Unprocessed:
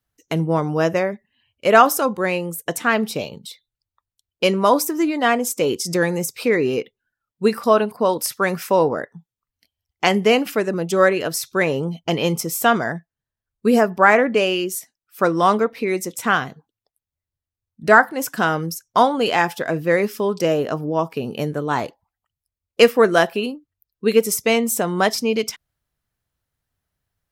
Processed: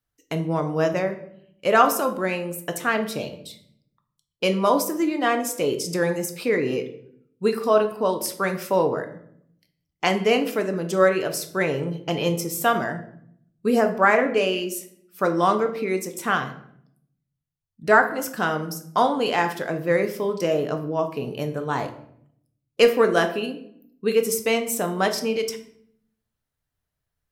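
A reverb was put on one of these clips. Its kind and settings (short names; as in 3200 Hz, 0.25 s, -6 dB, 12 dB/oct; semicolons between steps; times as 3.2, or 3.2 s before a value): shoebox room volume 130 m³, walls mixed, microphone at 0.41 m; gain -5 dB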